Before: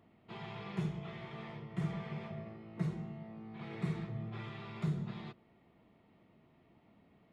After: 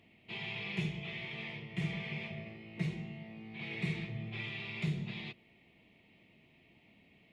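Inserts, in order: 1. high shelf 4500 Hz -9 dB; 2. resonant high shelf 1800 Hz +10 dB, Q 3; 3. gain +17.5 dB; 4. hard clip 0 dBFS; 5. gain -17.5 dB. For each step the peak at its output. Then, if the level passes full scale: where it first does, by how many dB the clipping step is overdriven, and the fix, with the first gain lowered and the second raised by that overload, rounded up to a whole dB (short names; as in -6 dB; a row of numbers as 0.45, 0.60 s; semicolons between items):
-23.5, -23.0, -5.5, -5.5, -23.0 dBFS; no overload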